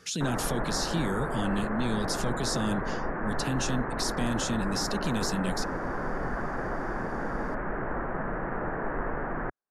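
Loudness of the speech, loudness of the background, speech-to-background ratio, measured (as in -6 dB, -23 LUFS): -32.0 LUFS, -33.0 LUFS, 1.0 dB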